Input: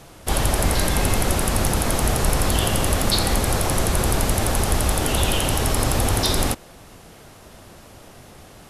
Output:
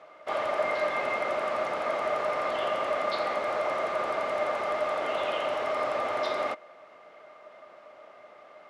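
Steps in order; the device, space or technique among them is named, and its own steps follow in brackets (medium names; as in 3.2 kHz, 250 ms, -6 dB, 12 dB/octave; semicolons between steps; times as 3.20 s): tin-can telephone (band-pass 530–2200 Hz; small resonant body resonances 610/1200/2100 Hz, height 15 dB, ringing for 65 ms); trim -6 dB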